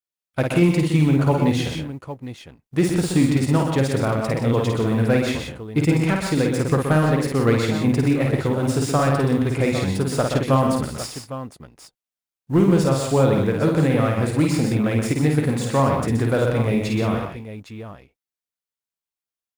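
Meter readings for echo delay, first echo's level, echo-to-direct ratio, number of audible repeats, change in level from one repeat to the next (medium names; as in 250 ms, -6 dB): 52 ms, -4.0 dB, -0.5 dB, 4, no regular repeats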